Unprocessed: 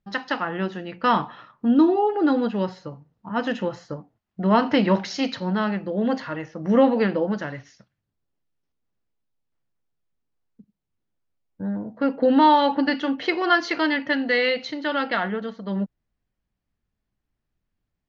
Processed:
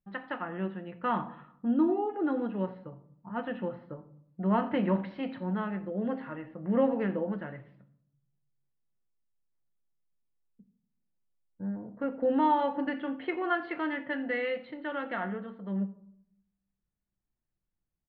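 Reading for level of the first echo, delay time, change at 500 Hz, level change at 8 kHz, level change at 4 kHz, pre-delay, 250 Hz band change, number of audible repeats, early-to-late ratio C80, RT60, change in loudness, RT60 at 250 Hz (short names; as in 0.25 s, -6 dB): -21.5 dB, 87 ms, -8.5 dB, n/a, -18.5 dB, 5 ms, -8.5 dB, 1, 17.5 dB, 0.70 s, -9.0 dB, 1.0 s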